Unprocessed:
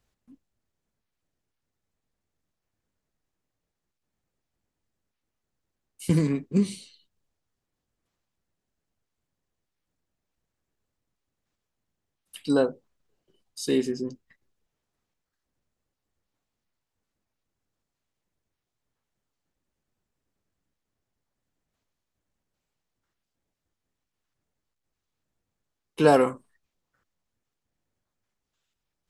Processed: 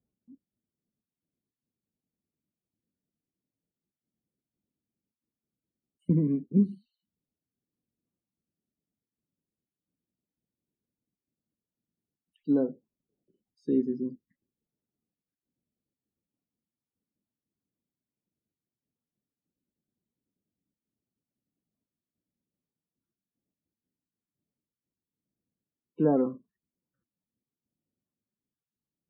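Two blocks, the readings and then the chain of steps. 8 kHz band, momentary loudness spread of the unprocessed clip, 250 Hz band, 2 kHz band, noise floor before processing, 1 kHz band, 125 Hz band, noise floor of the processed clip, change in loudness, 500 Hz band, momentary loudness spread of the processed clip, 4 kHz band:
under -30 dB, 16 LU, -0.5 dB, under -20 dB, -84 dBFS, under -10 dB, -2.5 dB, under -85 dBFS, -3.0 dB, -7.0 dB, 12 LU, under -30 dB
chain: loudest bins only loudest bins 32; band-pass 230 Hz, Q 1.5; gain +1 dB

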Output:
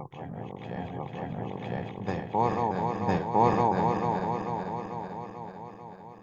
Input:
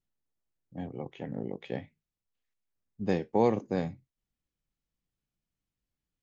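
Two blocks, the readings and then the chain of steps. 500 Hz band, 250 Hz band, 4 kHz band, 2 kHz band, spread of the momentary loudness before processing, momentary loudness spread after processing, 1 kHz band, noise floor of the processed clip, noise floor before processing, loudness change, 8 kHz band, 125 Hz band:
+3.0 dB, +3.5 dB, +4.5 dB, +7.5 dB, 14 LU, 16 LU, +13.0 dB, -46 dBFS, under -85 dBFS, +3.0 dB, n/a, +7.0 dB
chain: regenerating reverse delay 0.221 s, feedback 79%, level -3 dB; graphic EQ 125/250/500/1000/2000/4000 Hz +3/-7/-6/+10/-3/-4 dB; reverse echo 1.008 s -3.5 dB; gain +3 dB

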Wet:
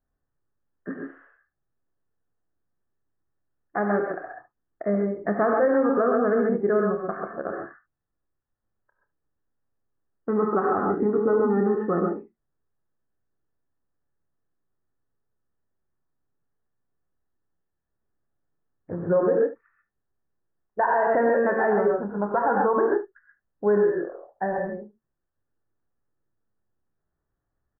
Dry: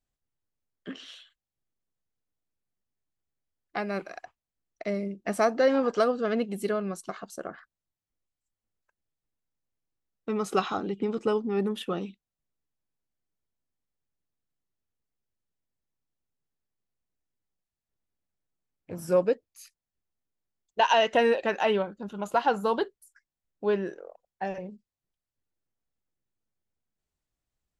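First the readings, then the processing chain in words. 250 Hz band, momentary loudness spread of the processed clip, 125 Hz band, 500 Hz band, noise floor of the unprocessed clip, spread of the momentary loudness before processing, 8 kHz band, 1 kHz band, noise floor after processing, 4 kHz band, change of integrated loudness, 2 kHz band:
+5.5 dB, 16 LU, +5.5 dB, +5.0 dB, under -85 dBFS, 19 LU, under -30 dB, +3.5 dB, -81 dBFS, under -40 dB, +4.0 dB, +3.0 dB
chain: Chebyshev low-pass 1800 Hz, order 6; early reflections 29 ms -10.5 dB, 73 ms -16.5 dB; non-linear reverb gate 0.16 s rising, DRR 1.5 dB; limiter -19 dBFS, peak gain reduction 10 dB; gain +5.5 dB

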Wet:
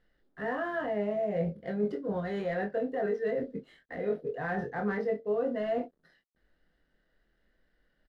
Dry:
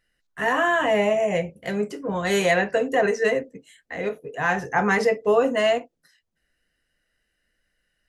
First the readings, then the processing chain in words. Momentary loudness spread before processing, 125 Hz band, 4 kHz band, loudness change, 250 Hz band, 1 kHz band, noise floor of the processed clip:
10 LU, -5.5 dB, under -20 dB, -10.0 dB, -6.5 dB, -13.0 dB, -76 dBFS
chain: CVSD 64 kbps; fifteen-band EQ 100 Hz -9 dB, 1000 Hz -9 dB, 2500 Hz -12 dB, 6300 Hz -3 dB; reverse; compressor 6:1, threshold -34 dBFS, peak gain reduction 16.5 dB; reverse; air absorption 360 m; doubler 24 ms -5.5 dB; gain +4.5 dB

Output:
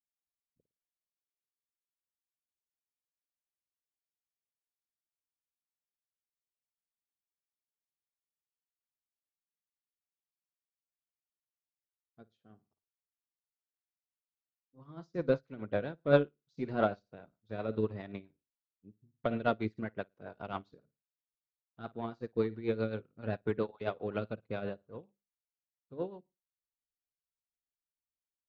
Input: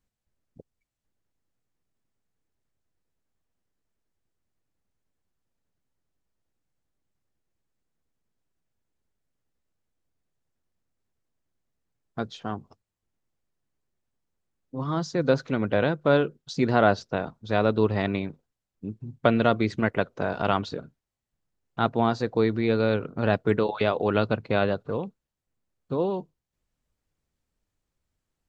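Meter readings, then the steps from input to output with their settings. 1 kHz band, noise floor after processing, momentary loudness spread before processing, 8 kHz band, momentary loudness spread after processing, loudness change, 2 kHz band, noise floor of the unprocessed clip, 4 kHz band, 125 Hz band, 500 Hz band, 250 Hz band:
-13.0 dB, under -85 dBFS, 14 LU, n/a, 16 LU, -10.0 dB, -13.0 dB, under -85 dBFS, -15.5 dB, -12.0 dB, -9.5 dB, -11.5 dB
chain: one diode to ground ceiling -6.5 dBFS; LPF 3500 Hz 6 dB/oct; flutter echo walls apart 9.4 m, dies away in 0.27 s; rotary speaker horn 0.75 Hz, later 7.5 Hz, at 14.38; upward expander 2.5:1, over -38 dBFS

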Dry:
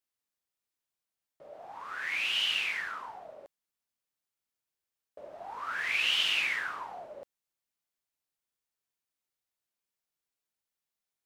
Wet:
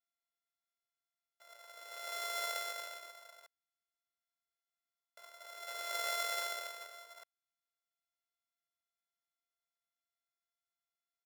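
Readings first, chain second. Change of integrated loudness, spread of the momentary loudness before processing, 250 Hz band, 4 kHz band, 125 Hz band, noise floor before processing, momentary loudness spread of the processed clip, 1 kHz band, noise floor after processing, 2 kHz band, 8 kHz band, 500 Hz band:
-9.5 dB, 21 LU, under -10 dB, -13.0 dB, n/a, under -85 dBFS, 22 LU, -3.5 dB, under -85 dBFS, -12.0 dB, +2.5 dB, 0.0 dB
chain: sample sorter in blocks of 64 samples; HPF 780 Hz 12 dB/oct; comb 2 ms, depth 81%; gain -8 dB

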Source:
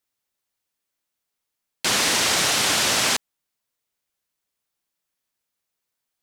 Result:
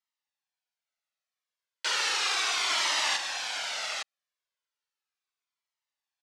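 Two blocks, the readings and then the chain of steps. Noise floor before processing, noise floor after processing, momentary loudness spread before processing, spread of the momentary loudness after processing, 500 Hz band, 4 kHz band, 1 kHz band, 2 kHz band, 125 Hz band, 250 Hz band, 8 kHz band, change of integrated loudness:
-82 dBFS, under -85 dBFS, 6 LU, 9 LU, -12.5 dB, -6.0 dB, -5.5 dB, -5.0 dB, under -30 dB, -21.5 dB, -10.5 dB, -8.5 dB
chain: BPF 710–5500 Hz; echo 0.859 s -5.5 dB; cascading flanger falling 0.35 Hz; gain -1.5 dB

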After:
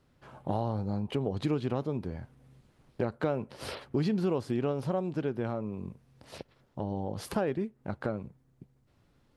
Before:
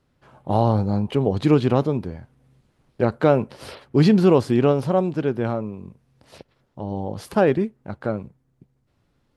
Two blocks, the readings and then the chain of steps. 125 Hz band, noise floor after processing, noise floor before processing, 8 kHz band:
-11.5 dB, -68 dBFS, -68 dBFS, n/a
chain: compressor 3:1, threshold -31 dBFS, peak gain reduction 15 dB

